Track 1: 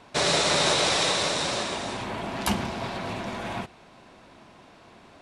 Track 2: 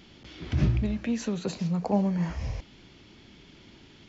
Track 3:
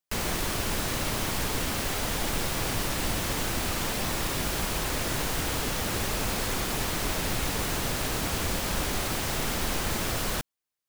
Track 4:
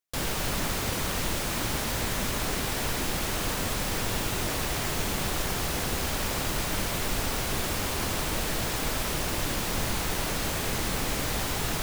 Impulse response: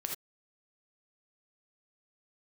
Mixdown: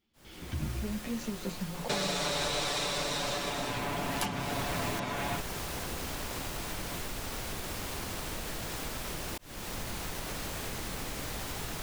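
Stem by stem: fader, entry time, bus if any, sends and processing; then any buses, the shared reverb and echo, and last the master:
+2.0 dB, 1.75 s, bus B, no send, comb 6.9 ms
-2.0 dB, 0.00 s, bus B, no send, gate with hold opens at -41 dBFS; ensemble effect
-18.0 dB, 0.20 s, bus A, no send, comb 5.6 ms, depth 81%
-3.0 dB, 0.00 s, bus A, no send, auto duck -17 dB, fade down 0.40 s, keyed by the second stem
bus A: 0.0 dB, auto swell 0.575 s; compressor, threshold -34 dBFS, peak gain reduction 7.5 dB
bus B: 0.0 dB, compressor 4:1, threshold -32 dBFS, peak gain reduction 14.5 dB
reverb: off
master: dry

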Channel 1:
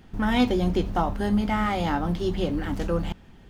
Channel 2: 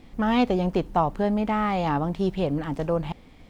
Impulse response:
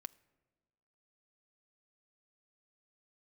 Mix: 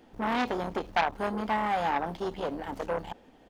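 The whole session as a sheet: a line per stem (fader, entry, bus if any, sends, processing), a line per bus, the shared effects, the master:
-5.0 dB, 0.00 s, no send, dry
+0.5 dB, 3.7 ms, no send, Chebyshev band-pass 220–900 Hz, order 3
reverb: off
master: tone controls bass -11 dB, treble 0 dB; core saturation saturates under 1700 Hz

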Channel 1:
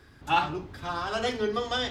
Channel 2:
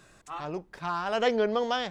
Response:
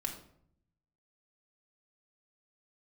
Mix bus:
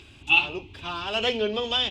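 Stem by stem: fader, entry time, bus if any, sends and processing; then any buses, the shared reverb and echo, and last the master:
+1.5 dB, 0.00 s, no send, upward compressor, threshold -41 dBFS; EQ curve 100 Hz 0 dB, 170 Hz -9 dB, 340 Hz -2 dB, 600 Hz -17 dB, 870 Hz -7 dB, 1700 Hz -21 dB, 2600 Hz +14 dB, 4800 Hz -5 dB, 8100 Hz -5 dB, 12000 Hz -18 dB
-3.0 dB, 13 ms, polarity flipped, no send, dry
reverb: off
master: low shelf 75 Hz -5.5 dB

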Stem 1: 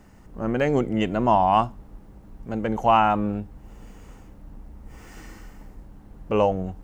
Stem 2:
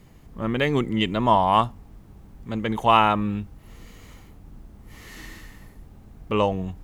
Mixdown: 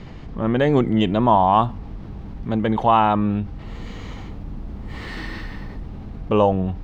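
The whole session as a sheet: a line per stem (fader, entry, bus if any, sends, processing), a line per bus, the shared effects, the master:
-7.0 dB, 0.00 s, no send, high shelf 5900 Hz -8.5 dB; AGC gain up to 10 dB
-4.5 dB, 0.00 s, no send, LPF 4800 Hz 24 dB/oct; fast leveller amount 50%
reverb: off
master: dry

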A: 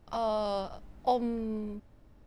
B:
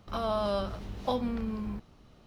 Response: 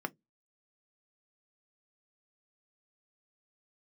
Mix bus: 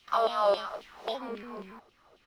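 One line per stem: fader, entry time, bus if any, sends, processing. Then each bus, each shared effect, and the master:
-8.0 dB, 0.00 s, no send, shaped vibrato square 3.5 Hz, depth 160 cents
+3.0 dB, 0.3 ms, send -11.5 dB, elliptic high-pass 160 Hz; LFO high-pass saw down 3.7 Hz 360–3300 Hz; auto duck -7 dB, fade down 1.00 s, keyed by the first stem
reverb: on, RT60 0.15 s, pre-delay 3 ms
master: low shelf 140 Hz -12 dB

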